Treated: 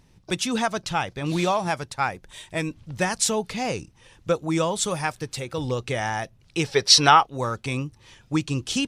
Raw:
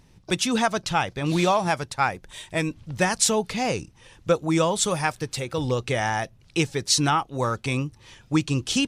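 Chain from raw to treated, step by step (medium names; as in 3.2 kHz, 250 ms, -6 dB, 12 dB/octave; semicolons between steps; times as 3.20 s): time-frequency box 6.65–7.26 s, 370–6000 Hz +10 dB; trim -2 dB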